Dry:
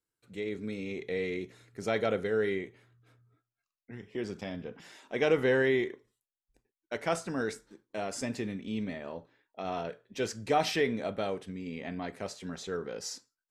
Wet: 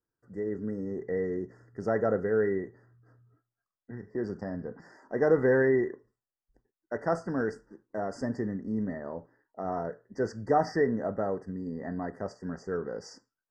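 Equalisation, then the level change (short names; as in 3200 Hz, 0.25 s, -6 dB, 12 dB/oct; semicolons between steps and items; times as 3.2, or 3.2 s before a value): brick-wall FIR band-stop 2000–4500 Hz; tape spacing loss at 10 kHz 24 dB; +4.0 dB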